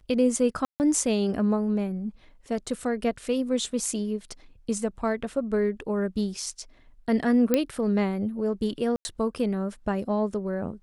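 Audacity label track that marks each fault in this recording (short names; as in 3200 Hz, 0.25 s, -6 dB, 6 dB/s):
0.650000	0.800000	gap 0.149 s
7.540000	7.540000	pop -8 dBFS
8.960000	9.050000	gap 90 ms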